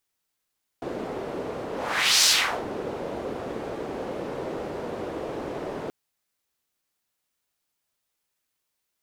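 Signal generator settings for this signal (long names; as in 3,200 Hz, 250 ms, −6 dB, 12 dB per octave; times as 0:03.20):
pass-by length 5.08 s, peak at 0:01.43, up 0.57 s, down 0.42 s, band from 450 Hz, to 5,300 Hz, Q 1.6, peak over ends 14.5 dB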